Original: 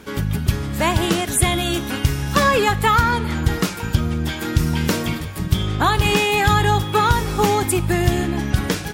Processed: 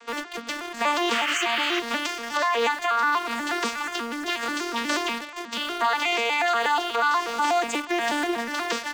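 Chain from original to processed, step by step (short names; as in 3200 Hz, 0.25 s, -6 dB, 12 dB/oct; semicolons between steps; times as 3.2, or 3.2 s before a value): arpeggiated vocoder major triad, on A#3, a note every 0.121 s; HPF 820 Hz 12 dB/oct; painted sound noise, 1.12–1.8, 1100–3200 Hz -33 dBFS; high shelf 2200 Hz +4 dB; in parallel at -8.5 dB: requantised 6-bit, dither none; on the sum: compressor, threshold -19 dBFS, peak gain reduction 7 dB; on a send at -23.5 dB: reverb, pre-delay 3 ms; on the sum: limiter -19 dBFS, peak gain reduction 9 dB; Doppler distortion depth 0.12 ms; gain +4 dB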